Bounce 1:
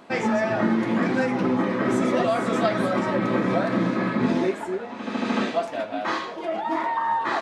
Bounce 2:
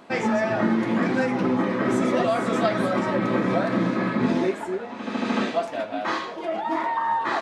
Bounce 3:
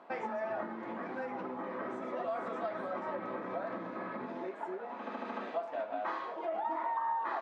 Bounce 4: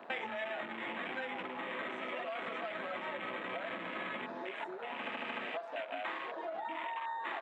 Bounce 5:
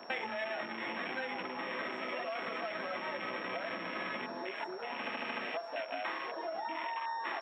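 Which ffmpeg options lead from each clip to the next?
ffmpeg -i in.wav -af anull out.wav
ffmpeg -i in.wav -af "acompressor=threshold=-27dB:ratio=6,bandpass=frequency=850:width_type=q:width=1:csg=0,volume=-3.5dB" out.wav
ffmpeg -i in.wav -filter_complex "[0:a]acrossover=split=650|1400[link_01][link_02][link_03];[link_01]acompressor=threshold=-54dB:ratio=4[link_04];[link_02]acompressor=threshold=-49dB:ratio=4[link_05];[link_03]acompressor=threshold=-57dB:ratio=4[link_06];[link_04][link_05][link_06]amix=inputs=3:normalize=0,afwtdn=0.00251,highshelf=frequency=1700:width_type=q:width=1.5:gain=11.5,volume=6.5dB" out.wav
ffmpeg -i in.wav -af "aeval=exprs='val(0)+0.00141*sin(2*PI*5500*n/s)':channel_layout=same,volume=1.5dB" out.wav

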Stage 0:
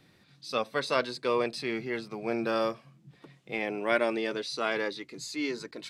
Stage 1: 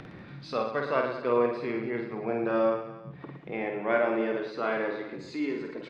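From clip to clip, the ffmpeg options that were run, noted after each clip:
ffmpeg -i in.wav -af "lowpass=1700,acompressor=mode=upward:threshold=-33dB:ratio=2.5,aecho=1:1:50|112.5|190.6|288.3|410.4:0.631|0.398|0.251|0.158|0.1" out.wav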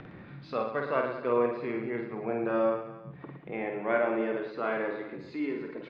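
ffmpeg -i in.wav -af "lowpass=3100,volume=-1.5dB" out.wav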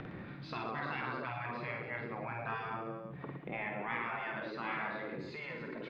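ffmpeg -i in.wav -af "afftfilt=real='re*lt(hypot(re,im),0.0708)':imag='im*lt(hypot(re,im),0.0708)':win_size=1024:overlap=0.75,volume=1.5dB" out.wav

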